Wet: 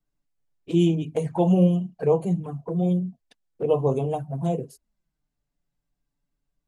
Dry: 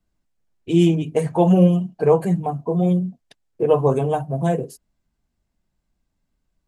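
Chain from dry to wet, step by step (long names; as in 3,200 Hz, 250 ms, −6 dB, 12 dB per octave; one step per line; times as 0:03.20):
flanger swept by the level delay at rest 7 ms, full sweep at −16 dBFS
level −4 dB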